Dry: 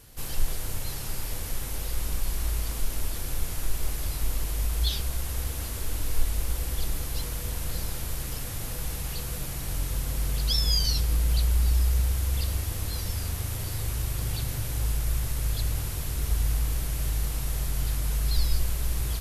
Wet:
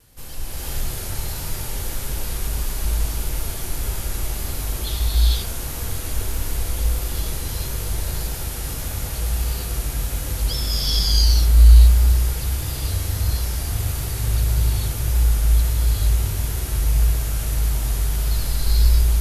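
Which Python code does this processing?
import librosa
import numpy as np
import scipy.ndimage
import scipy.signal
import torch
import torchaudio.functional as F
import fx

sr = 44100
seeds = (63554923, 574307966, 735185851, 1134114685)

y = fx.rev_gated(x, sr, seeds[0], gate_ms=490, shape='rising', drr_db=-8.0)
y = fx.vibrato(y, sr, rate_hz=1.6, depth_cents=31.0)
y = y * librosa.db_to_amplitude(-3.0)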